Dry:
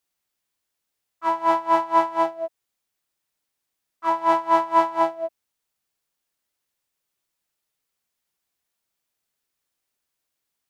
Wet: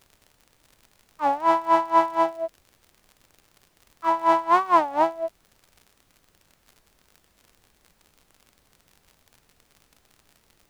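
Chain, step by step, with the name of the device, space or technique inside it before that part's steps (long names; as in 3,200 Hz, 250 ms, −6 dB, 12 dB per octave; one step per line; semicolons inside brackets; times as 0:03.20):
warped LP (wow of a warped record 33 1/3 rpm, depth 250 cents; surface crackle 69 per second −39 dBFS; pink noise bed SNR 37 dB)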